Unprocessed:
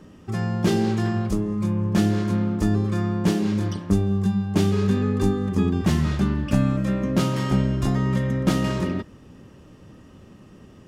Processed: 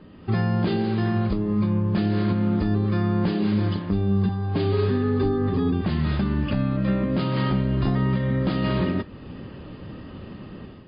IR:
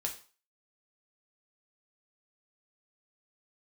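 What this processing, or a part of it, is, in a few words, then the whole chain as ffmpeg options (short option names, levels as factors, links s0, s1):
low-bitrate web radio: -filter_complex "[0:a]asettb=1/sr,asplit=3[s0][s1][s2];[s0]atrim=end=4.284[s3];[s1]atrim=start=4.28:end=5.72,asetpts=PTS-STARTPTS,afade=t=in:d=0.004:c=qsin,afade=t=out:st=1.436:d=0.004:c=qsin,aecho=1:1:7.4:0.92,atrim=end_sample=63504[s4];[s2]atrim=start=5.716[s5];[s3][s4]acrossfade=d=0.004:c1=hsin:c2=qsin[s6];[s6][s5]acrossfade=d=0.004:c1=qsin:c2=hsin,dynaudnorm=f=110:g=5:m=2.82,alimiter=limit=0.211:level=0:latency=1:release=401" -ar 11025 -c:a libmp3lame -b:a 24k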